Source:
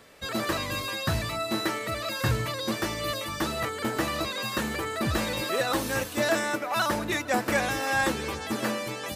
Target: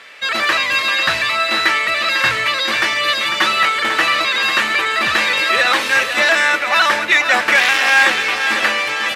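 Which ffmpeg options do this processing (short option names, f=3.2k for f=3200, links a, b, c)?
-filter_complex "[0:a]asettb=1/sr,asplit=3[a][b][c];[a]atrim=end=3.234[d];[b]atrim=start=3.23:end=3.81,asetpts=PTS-STARTPTS,afade=t=in:d=0.004:c=qsin,afade=t=out:st=0.576:d=0.004:c=qsin,aecho=1:1:5.4:0.72,atrim=end_sample=25578[e];[c]atrim=start=3.806[f];[d][e]acrossfade=d=0.004:c1=hsin:c2=qsin[g];[g][f]acrossfade=d=0.004:c1=qsin:c2=hsin,asettb=1/sr,asplit=3[h][i][j];[h]atrim=end=7.554[k];[i]atrim=start=7.55:end=8.05,asetpts=PTS-STARTPTS,afade=t=in:d=0.004:c=qsin,afade=t=out:st=0.496:d=0.004:c=qsin,acrusher=bits=5:dc=4:mix=0:aa=0.000001[l];[j]atrim=start=8.046[m];[k][l]acrossfade=d=0.004:c1=hsin:c2=qsin[n];[n][m]acrossfade=d=0.004:c1=qsin:c2=hsin,bandpass=f=2.3k:t=q:w=1.4:csg=0,aecho=1:1:496|992|1488|1984|2480:0.355|0.163|0.0751|0.0345|0.0159,alimiter=level_in=21dB:limit=-1dB:release=50:level=0:latency=1,volume=-1dB"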